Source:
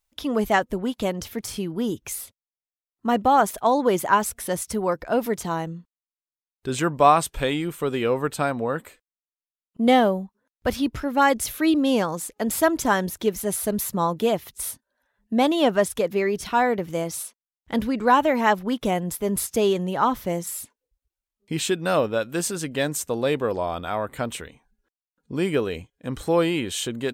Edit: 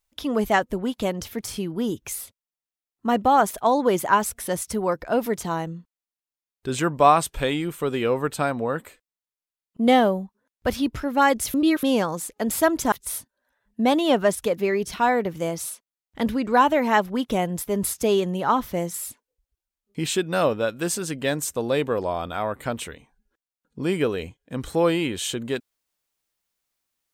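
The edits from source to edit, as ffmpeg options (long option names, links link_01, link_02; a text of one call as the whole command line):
ffmpeg -i in.wav -filter_complex "[0:a]asplit=4[link_01][link_02][link_03][link_04];[link_01]atrim=end=11.542[link_05];[link_02]atrim=start=11.538:end=11.832,asetpts=PTS-STARTPTS,areverse[link_06];[link_03]atrim=start=11.828:end=12.922[link_07];[link_04]atrim=start=14.448[link_08];[link_05][link_06]acrossfade=duration=0.004:curve1=hsin:curve2=hsin[link_09];[link_09][link_07]acrossfade=duration=0.004:curve1=hsin:curve2=hsin[link_10];[link_10][link_08]acrossfade=duration=0.004:curve1=hsin:curve2=hsin" out.wav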